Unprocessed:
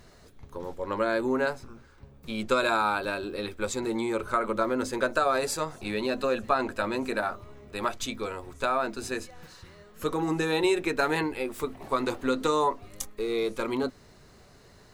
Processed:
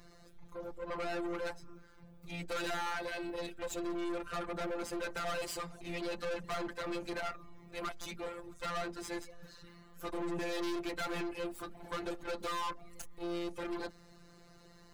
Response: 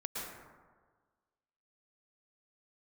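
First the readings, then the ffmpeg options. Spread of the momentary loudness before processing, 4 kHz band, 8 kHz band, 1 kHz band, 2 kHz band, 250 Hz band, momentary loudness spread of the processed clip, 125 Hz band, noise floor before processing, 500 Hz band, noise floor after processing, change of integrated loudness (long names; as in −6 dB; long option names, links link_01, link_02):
11 LU, −8.0 dB, −9.5 dB, −11.5 dB, −10.5 dB, −9.5 dB, 11 LU, −9.5 dB, −55 dBFS, −11.5 dB, −59 dBFS, −11.0 dB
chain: -af "afftfilt=real='hypot(re,im)*cos(PI*b)':imag='0':win_size=1024:overlap=0.75,aeval=exprs='(tanh(79.4*val(0)+0.5)-tanh(0.5))/79.4':channel_layout=same,volume=3dB"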